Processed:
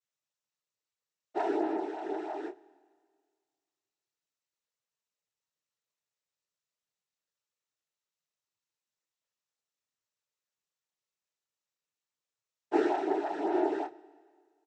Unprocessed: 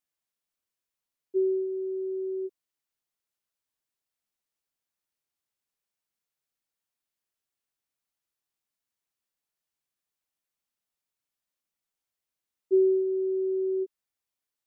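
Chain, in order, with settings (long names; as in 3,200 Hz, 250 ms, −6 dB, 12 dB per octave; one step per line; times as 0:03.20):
lower of the sound and its delayed copy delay 1.8 ms
chorus effect 0.59 Hz, delay 18.5 ms, depth 4.8 ms
cochlear-implant simulation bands 12
double-tracking delay 28 ms −10 dB
on a send: convolution reverb RT60 1.8 s, pre-delay 35 ms, DRR 21 dB
on the sum: level +2.5 dB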